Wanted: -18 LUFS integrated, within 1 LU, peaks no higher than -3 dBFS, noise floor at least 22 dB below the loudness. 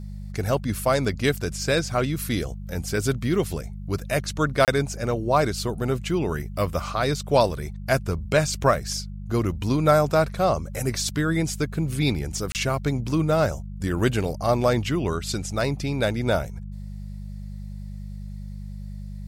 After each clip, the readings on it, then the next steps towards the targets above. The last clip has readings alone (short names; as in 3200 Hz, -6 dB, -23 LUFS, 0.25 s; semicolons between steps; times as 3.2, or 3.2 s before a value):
dropouts 2; longest dropout 28 ms; hum 50 Hz; harmonics up to 200 Hz; hum level -32 dBFS; loudness -24.5 LUFS; peak -5.0 dBFS; loudness target -18.0 LUFS
-> interpolate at 4.65/12.52, 28 ms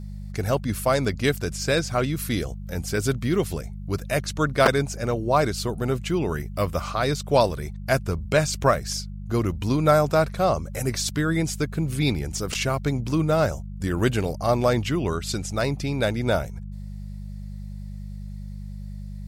dropouts 0; hum 50 Hz; harmonics up to 200 Hz; hum level -32 dBFS
-> de-hum 50 Hz, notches 4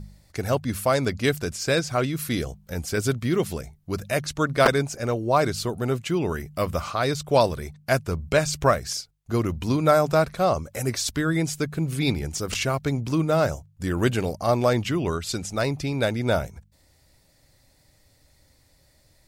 hum none; loudness -24.5 LUFS; peak -4.5 dBFS; loudness target -18.0 LUFS
-> gain +6.5 dB; limiter -3 dBFS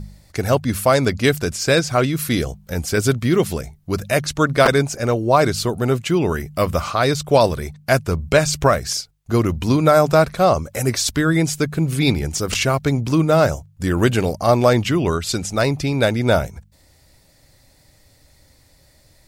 loudness -18.5 LUFS; peak -3.0 dBFS; noise floor -55 dBFS